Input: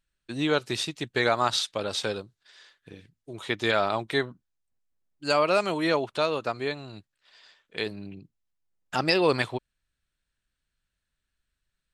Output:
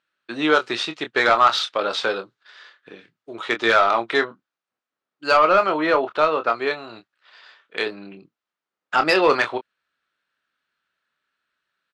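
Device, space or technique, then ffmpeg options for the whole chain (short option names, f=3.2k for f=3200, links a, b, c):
intercom: -filter_complex "[0:a]highpass=330,lowpass=3.9k,equalizer=f=1.3k:t=o:w=0.55:g=7.5,asoftclip=type=tanh:threshold=-14.5dB,asplit=2[a][b];[b]adelay=26,volume=-8.5dB[c];[a][c]amix=inputs=2:normalize=0,asettb=1/sr,asplit=3[d][e][f];[d]atrim=end=5.374[g];[e]atrim=start=5.37:end=6.48,asetpts=PTS-STARTPTS,afade=t=in:d=0.004:c=qsin,afade=t=out:st=1.106:d=0.004:c=qsin,highshelf=f=4.1k:g=-11[h];[f]atrim=start=6.476[i];[g][h]acrossfade=d=0.004:c1=hsin:c2=qsin[j];[j][i]acrossfade=d=0.004:c1=qsin:c2=hsin,volume=7dB"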